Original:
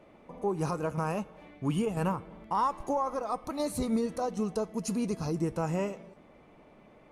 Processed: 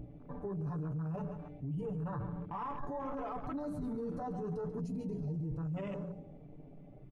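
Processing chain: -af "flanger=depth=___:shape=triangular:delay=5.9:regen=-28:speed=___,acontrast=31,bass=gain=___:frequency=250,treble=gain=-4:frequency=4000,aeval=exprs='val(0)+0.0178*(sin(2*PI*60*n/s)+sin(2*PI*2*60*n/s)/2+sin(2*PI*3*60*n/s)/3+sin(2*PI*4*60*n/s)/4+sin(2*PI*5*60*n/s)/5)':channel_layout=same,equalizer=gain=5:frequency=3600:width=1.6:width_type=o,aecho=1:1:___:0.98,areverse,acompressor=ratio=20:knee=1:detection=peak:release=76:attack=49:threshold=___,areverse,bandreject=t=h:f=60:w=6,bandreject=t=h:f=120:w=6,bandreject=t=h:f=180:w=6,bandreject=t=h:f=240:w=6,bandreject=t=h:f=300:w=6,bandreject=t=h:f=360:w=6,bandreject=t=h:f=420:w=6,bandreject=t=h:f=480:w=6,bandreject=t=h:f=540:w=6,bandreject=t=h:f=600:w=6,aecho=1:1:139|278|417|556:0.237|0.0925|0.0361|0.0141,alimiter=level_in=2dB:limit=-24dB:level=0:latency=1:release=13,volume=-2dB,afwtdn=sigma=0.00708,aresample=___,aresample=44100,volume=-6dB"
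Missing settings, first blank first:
8.1, 0.54, 13, 6.9, -28dB, 32000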